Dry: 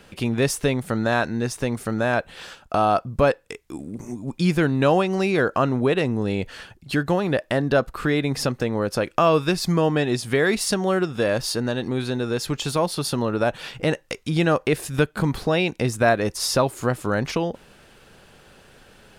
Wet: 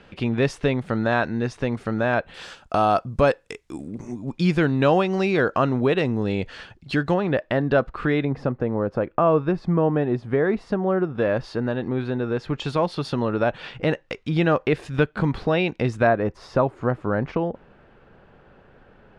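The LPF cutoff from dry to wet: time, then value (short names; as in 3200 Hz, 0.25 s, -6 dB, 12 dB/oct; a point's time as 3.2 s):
3400 Hz
from 2.34 s 8200 Hz
from 3.88 s 5000 Hz
from 7.14 s 2800 Hz
from 8.25 s 1200 Hz
from 11.18 s 2000 Hz
from 12.6 s 3200 Hz
from 16.07 s 1500 Hz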